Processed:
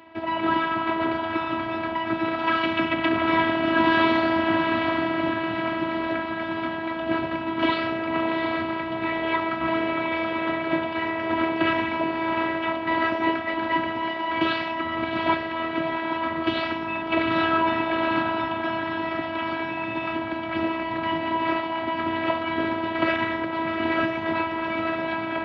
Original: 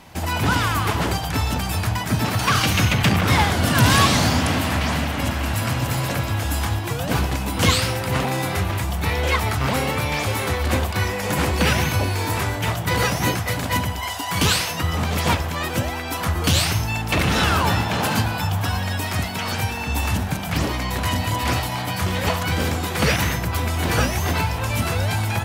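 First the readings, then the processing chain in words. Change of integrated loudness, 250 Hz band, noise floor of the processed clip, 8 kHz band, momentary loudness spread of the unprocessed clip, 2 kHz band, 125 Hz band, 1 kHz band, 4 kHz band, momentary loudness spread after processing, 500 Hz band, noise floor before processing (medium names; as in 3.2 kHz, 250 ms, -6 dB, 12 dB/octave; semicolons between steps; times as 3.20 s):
-3.5 dB, 0.0 dB, -30 dBFS, under -40 dB, 6 LU, -2.5 dB, -20.0 dB, -0.5 dB, -9.0 dB, 6 LU, +0.5 dB, -27 dBFS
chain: Bessel low-pass 2 kHz, order 8; on a send: echo that smears into a reverb 747 ms, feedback 41%, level -7 dB; on the sum: robot voice 327 Hz; high-pass 100 Hz 24 dB/octave; trim +2 dB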